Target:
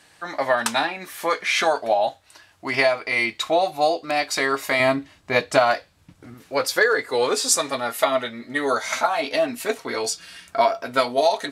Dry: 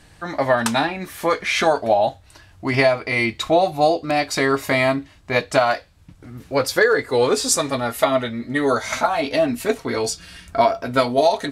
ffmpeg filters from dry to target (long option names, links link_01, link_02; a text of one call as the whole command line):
ffmpeg -i in.wav -af "asetnsamples=nb_out_samples=441:pad=0,asendcmd='4.8 highpass f 180;6.34 highpass f 570',highpass=frequency=660:poles=1" out.wav